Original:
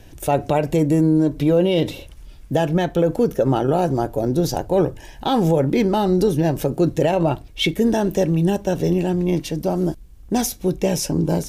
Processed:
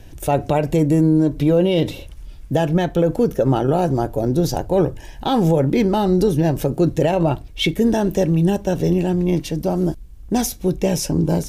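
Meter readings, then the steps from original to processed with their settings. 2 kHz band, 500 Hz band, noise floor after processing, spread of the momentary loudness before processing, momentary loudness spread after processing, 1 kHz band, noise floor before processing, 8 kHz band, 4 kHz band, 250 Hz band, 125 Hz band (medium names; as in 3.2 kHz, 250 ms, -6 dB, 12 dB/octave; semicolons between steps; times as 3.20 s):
0.0 dB, +0.5 dB, -38 dBFS, 5 LU, 5 LU, 0.0 dB, -42 dBFS, 0.0 dB, 0.0 dB, +1.5 dB, +2.0 dB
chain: bass shelf 140 Hz +5 dB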